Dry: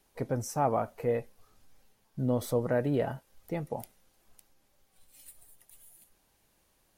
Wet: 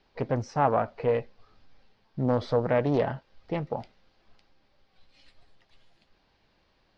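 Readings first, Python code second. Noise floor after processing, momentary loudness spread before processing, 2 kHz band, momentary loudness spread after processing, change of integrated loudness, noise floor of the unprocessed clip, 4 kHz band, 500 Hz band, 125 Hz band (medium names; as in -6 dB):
-68 dBFS, 12 LU, +5.5 dB, 11 LU, +4.0 dB, -71 dBFS, +4.0 dB, +4.0 dB, +3.0 dB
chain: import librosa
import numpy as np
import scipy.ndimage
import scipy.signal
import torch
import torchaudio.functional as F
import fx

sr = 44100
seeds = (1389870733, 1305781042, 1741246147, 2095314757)

y = scipy.signal.sosfilt(scipy.signal.cheby1(4, 1.0, 4800.0, 'lowpass', fs=sr, output='sos'), x)
y = fx.doppler_dist(y, sr, depth_ms=0.42)
y = y * 10.0 ** (5.0 / 20.0)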